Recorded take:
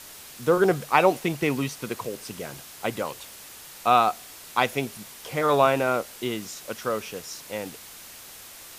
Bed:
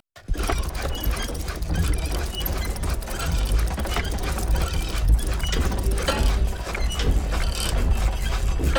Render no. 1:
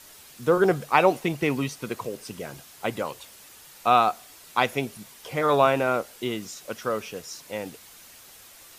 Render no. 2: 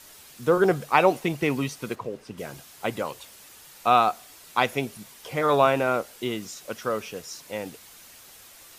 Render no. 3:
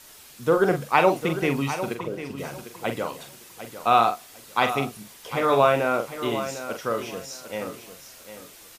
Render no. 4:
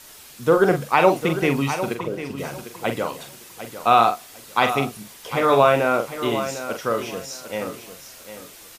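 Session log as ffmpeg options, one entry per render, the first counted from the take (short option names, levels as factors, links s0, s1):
-af "afftdn=nr=6:nf=-45"
-filter_complex "[0:a]asplit=3[s0][s1][s2];[s0]afade=t=out:st=1.94:d=0.02[s3];[s1]lowpass=f=1700:p=1,afade=t=in:st=1.94:d=0.02,afade=t=out:st=2.37:d=0.02[s4];[s2]afade=t=in:st=2.37:d=0.02[s5];[s3][s4][s5]amix=inputs=3:normalize=0"
-filter_complex "[0:a]asplit=2[s0][s1];[s1]adelay=43,volume=0.422[s2];[s0][s2]amix=inputs=2:normalize=0,aecho=1:1:751|1502|2253:0.266|0.0612|0.0141"
-af "volume=1.5,alimiter=limit=0.708:level=0:latency=1"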